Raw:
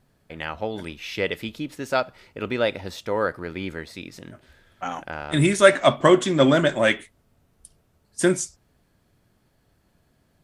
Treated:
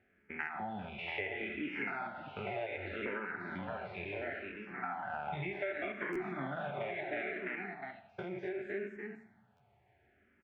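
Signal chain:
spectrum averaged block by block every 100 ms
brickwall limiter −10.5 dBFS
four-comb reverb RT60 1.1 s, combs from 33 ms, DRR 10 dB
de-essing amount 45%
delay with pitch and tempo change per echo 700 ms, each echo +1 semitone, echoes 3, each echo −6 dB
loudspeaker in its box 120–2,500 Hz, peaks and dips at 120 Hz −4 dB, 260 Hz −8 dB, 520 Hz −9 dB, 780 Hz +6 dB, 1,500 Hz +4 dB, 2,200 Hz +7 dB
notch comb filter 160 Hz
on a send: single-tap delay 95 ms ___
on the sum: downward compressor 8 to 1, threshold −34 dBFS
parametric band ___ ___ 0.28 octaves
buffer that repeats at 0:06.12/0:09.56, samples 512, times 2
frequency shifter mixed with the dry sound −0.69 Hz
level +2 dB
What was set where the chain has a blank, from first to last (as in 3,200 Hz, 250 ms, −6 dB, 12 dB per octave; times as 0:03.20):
−20.5 dB, 1,100 Hz, −9.5 dB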